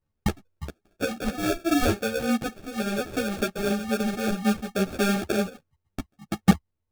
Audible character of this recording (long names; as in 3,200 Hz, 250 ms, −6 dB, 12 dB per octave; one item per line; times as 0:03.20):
phaser sweep stages 12, 3.6 Hz, lowest notch 330–1,100 Hz
sample-and-hold tremolo 3.5 Hz
aliases and images of a low sample rate 1,000 Hz, jitter 0%
a shimmering, thickened sound